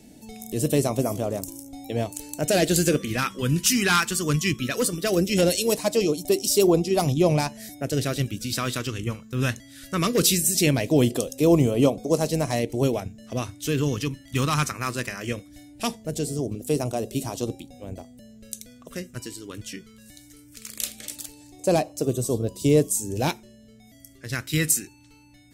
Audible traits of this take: phasing stages 2, 0.19 Hz, lowest notch 650–1600 Hz

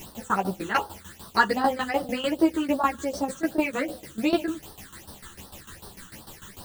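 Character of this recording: a quantiser's noise floor 8-bit, dither triangular; phasing stages 8, 2.6 Hz, lowest notch 650–2300 Hz; tremolo saw down 6.7 Hz, depth 85%; a shimmering, thickened sound

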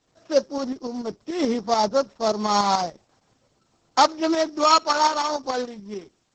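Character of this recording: a buzz of ramps at a fixed pitch in blocks of 8 samples; tremolo saw up 6.9 Hz, depth 55%; a quantiser's noise floor 12-bit, dither triangular; Opus

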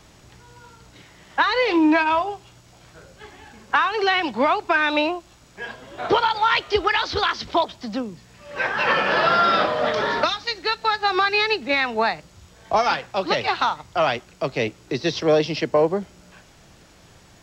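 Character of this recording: noise floor -51 dBFS; spectral tilt -1.5 dB/octave

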